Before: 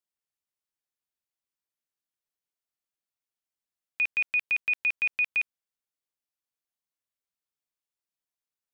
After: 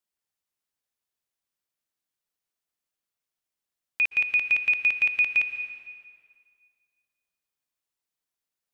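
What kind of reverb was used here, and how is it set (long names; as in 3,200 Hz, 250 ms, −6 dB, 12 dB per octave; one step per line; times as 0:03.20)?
dense smooth reverb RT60 2 s, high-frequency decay 0.85×, pre-delay 110 ms, DRR 8.5 dB
level +3 dB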